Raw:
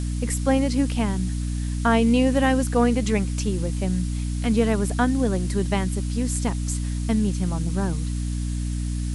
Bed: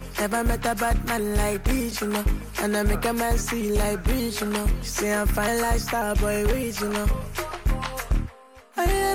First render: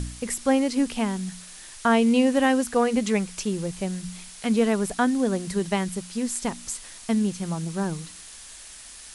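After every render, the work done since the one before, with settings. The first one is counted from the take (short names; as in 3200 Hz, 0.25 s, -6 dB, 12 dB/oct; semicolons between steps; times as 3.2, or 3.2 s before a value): de-hum 60 Hz, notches 5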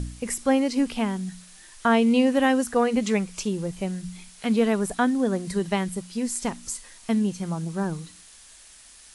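noise print and reduce 6 dB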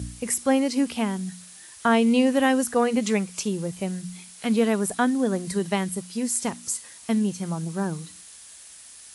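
HPF 61 Hz 24 dB/oct; high shelf 9400 Hz +10 dB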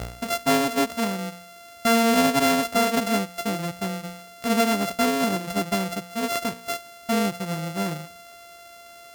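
sample sorter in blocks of 64 samples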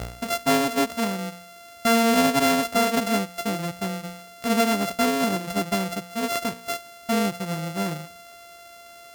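nothing audible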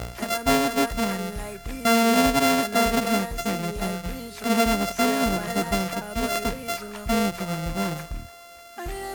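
add bed -11 dB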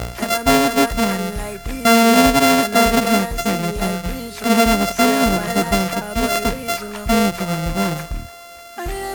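gain +7 dB; limiter -3 dBFS, peak gain reduction 1.5 dB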